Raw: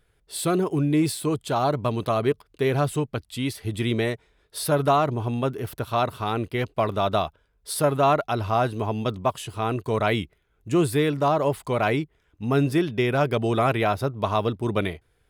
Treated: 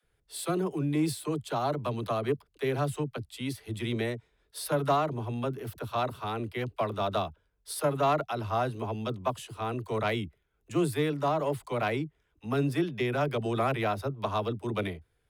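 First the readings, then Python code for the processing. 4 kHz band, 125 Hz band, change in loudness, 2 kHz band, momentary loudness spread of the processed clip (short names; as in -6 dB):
-6.5 dB, -7.0 dB, -6.5 dB, -6.5 dB, 8 LU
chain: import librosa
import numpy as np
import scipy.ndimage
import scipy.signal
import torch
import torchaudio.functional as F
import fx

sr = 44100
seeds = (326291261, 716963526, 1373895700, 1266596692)

y = fx.cheby_harmonics(x, sr, harmonics=(3,), levels_db=(-21,), full_scale_db=-8.5)
y = fx.dispersion(y, sr, late='lows', ms=45.0, hz=310.0)
y = F.gain(torch.from_numpy(y), -4.5).numpy()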